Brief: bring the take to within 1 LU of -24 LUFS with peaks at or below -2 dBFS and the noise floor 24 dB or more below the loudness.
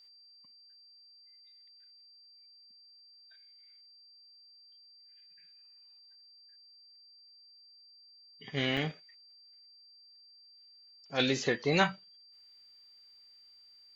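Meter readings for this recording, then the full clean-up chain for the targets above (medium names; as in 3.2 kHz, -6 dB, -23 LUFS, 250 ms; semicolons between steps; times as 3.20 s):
dropouts 1; longest dropout 4.3 ms; steady tone 4.7 kHz; tone level -56 dBFS; loudness -31.0 LUFS; peak level -11.0 dBFS; loudness target -24.0 LUFS
-> interpolate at 8.77 s, 4.3 ms; band-stop 4.7 kHz, Q 30; trim +7 dB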